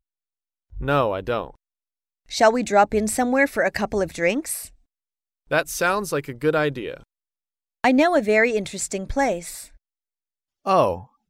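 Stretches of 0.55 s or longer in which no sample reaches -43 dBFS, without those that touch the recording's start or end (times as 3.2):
1.52–2.29
4.69–5.51
7.03–7.84
9.75–10.65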